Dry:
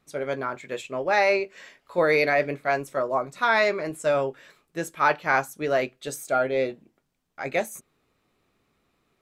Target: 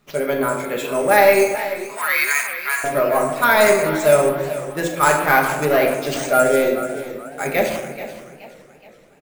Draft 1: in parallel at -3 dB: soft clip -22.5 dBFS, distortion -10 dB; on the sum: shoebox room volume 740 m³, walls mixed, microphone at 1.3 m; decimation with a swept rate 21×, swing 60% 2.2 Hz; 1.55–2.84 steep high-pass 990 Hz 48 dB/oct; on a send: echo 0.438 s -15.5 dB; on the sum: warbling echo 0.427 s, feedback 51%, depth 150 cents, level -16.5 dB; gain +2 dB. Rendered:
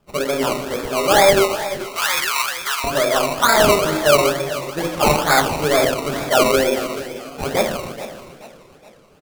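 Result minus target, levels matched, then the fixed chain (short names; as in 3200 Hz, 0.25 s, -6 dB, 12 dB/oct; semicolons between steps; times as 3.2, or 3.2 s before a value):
decimation with a swept rate: distortion +17 dB
in parallel at -3 dB: soft clip -22.5 dBFS, distortion -10 dB; on the sum: shoebox room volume 740 m³, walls mixed, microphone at 1.3 m; decimation with a swept rate 4×, swing 60% 2.2 Hz; 1.55–2.84 steep high-pass 990 Hz 48 dB/oct; on a send: echo 0.438 s -15.5 dB; on the sum: warbling echo 0.427 s, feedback 51%, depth 150 cents, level -16.5 dB; gain +2 dB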